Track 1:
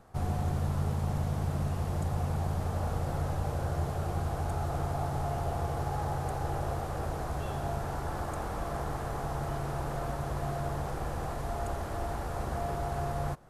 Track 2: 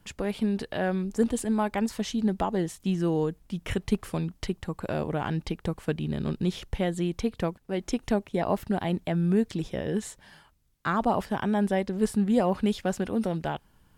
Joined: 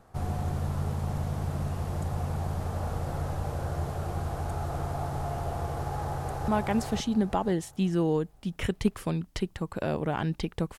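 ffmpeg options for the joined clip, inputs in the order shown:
-filter_complex "[0:a]apad=whole_dur=10.78,atrim=end=10.78,atrim=end=6.482[s0];[1:a]atrim=start=1.548:end=5.85[s1];[s0][s1]acrossfade=d=0.004:c1=hsin:c2=hsin,asplit=2[s2][s3];[s3]afade=t=in:st=5.94:d=0.01,afade=t=out:st=6.48:d=0.01,aecho=0:1:520|1040|1560|2080:0.749894|0.224968|0.0674905|0.0202471[s4];[s2][s4]amix=inputs=2:normalize=0"

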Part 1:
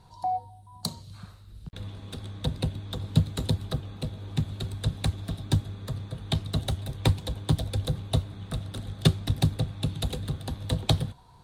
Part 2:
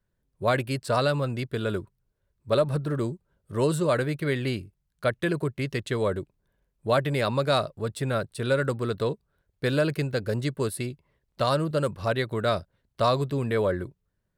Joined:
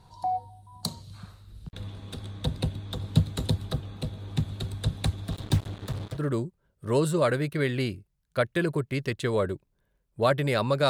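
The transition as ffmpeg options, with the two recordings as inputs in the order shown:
-filter_complex "[0:a]asettb=1/sr,asplit=3[s0][s1][s2];[s0]atrim=end=5.324[s3];[s1]atrim=start=5.32:end=6.22,asetpts=PTS-STARTPTS,afade=t=in:d=0.004:c=qsin,afade=t=out:st=0.896:d=0.004:c=qsin,acrusher=bits=5:mix=0:aa=0.5[s4];[s2]atrim=start=6.216[s5];[s3][s4]acrossfade=d=0.004:c1=hsin:c2=qsin[s6];[s6][s5]acrossfade=d=0.004:c1=qsin:c2=hsin,apad=whole_dur=10.89,atrim=end=10.89,atrim=end=6.22,asetpts=PTS-STARTPTS[s7];[1:a]atrim=start=2.79:end=7.56,asetpts=PTS-STARTPTS[s8];[s7][s8]acrossfade=d=0.1:c1=tri:c2=tri"

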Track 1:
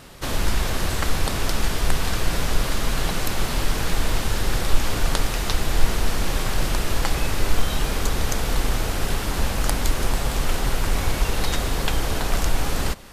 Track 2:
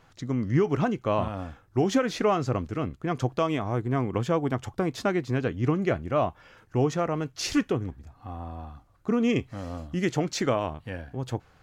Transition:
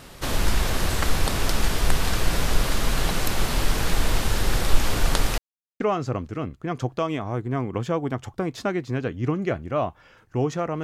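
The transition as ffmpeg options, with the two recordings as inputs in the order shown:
-filter_complex "[0:a]apad=whole_dur=10.83,atrim=end=10.83,asplit=2[s0][s1];[s0]atrim=end=5.38,asetpts=PTS-STARTPTS,afade=t=out:st=5.376:d=0.004:c=hsin[s2];[s1]atrim=start=5.38:end=5.8,asetpts=PTS-STARTPTS,volume=0[s3];[1:a]atrim=start=2.2:end=7.23,asetpts=PTS-STARTPTS,afade=t=in:d=0.004:c=hsin[s4];[s2][s3][s4]concat=n=3:v=0:a=1"

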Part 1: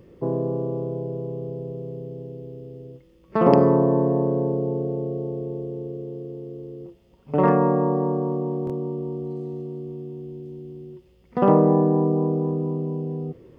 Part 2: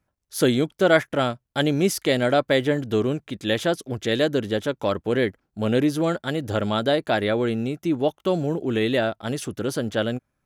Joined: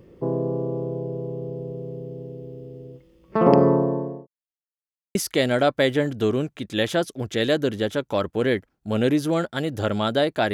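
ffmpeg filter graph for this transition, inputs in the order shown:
-filter_complex "[0:a]apad=whole_dur=10.53,atrim=end=10.53,asplit=2[s0][s1];[s0]atrim=end=4.27,asetpts=PTS-STARTPTS,afade=t=out:st=3.68:d=0.59[s2];[s1]atrim=start=4.27:end=5.15,asetpts=PTS-STARTPTS,volume=0[s3];[1:a]atrim=start=1.86:end=7.24,asetpts=PTS-STARTPTS,afade=t=in:d=0.004:c=hsin[s4];[s2][s3][s4]concat=n=3:v=0:a=1"

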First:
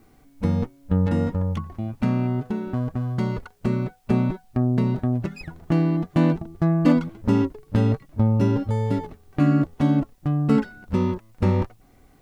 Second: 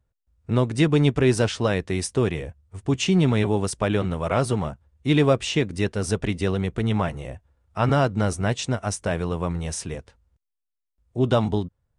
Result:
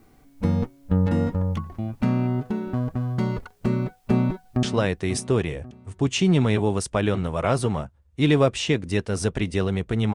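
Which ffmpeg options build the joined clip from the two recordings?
-filter_complex "[0:a]apad=whole_dur=10.14,atrim=end=10.14,atrim=end=4.632[s0];[1:a]atrim=start=1.498:end=7.01[s1];[s0][s1]acrossfade=d=0.004:c1=hsin:c2=hsin,asplit=2[s2][s3];[s3]afade=t=in:st=3.91:d=0.01,afade=t=out:st=4.63:d=0.01,aecho=0:1:540|1080|1620|2160:0.281838|0.0986434|0.0345252|0.0120838[s4];[s2][s4]amix=inputs=2:normalize=0"

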